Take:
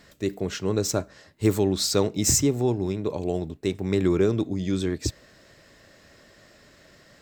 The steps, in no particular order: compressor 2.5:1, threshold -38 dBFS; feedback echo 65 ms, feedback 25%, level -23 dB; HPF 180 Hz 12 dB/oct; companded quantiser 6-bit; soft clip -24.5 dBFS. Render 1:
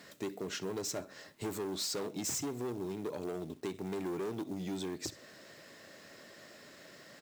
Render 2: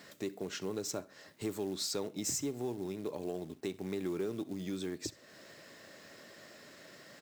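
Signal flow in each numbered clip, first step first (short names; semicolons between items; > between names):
feedback echo > soft clip > HPF > companded quantiser > compressor; feedback echo > companded quantiser > compressor > HPF > soft clip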